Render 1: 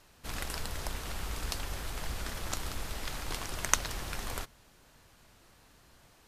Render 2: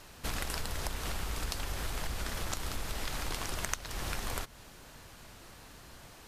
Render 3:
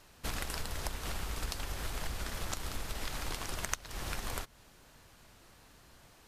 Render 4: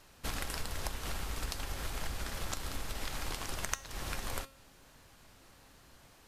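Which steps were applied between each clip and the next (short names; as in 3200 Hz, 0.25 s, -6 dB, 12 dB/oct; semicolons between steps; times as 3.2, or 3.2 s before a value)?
compressor 8:1, threshold -40 dBFS, peak gain reduction 21 dB; gain +8.5 dB
upward expander 1.5:1, over -45 dBFS
resonator 270 Hz, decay 0.52 s, harmonics all, mix 60%; gain +7 dB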